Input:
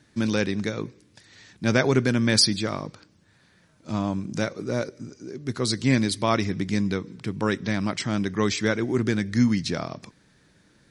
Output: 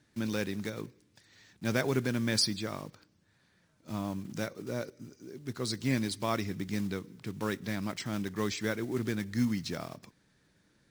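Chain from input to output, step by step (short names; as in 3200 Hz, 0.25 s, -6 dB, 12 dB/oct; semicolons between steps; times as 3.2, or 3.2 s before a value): block floating point 5-bit; gain -9 dB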